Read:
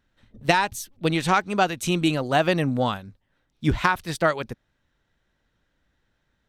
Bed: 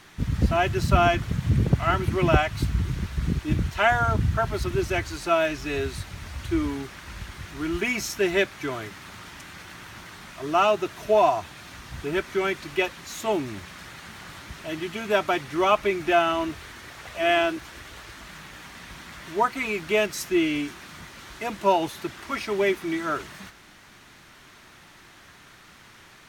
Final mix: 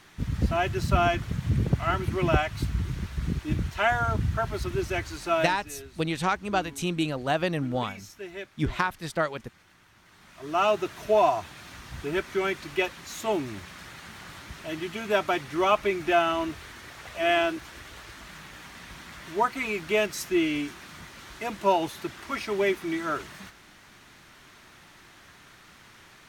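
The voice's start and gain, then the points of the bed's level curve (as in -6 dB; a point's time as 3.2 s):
4.95 s, -5.5 dB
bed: 5.42 s -3.5 dB
5.67 s -16.5 dB
9.97 s -16.5 dB
10.69 s -2 dB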